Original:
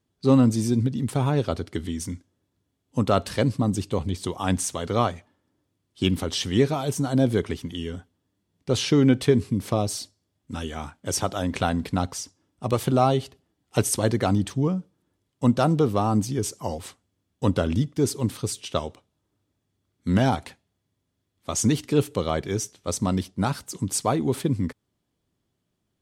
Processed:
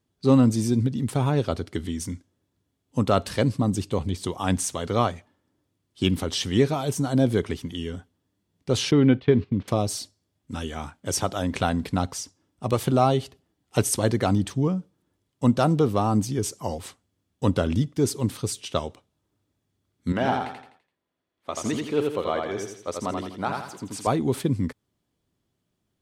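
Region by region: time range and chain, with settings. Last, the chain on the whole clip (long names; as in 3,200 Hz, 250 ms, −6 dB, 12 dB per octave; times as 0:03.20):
0:08.91–0:09.68: one scale factor per block 7 bits + low-pass filter 3,600 Hz 24 dB per octave + noise gate −33 dBFS, range −12 dB
0:20.12–0:24.07: bass and treble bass −14 dB, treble −13 dB + repeating echo 84 ms, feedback 40%, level −3.5 dB
whole clip: no processing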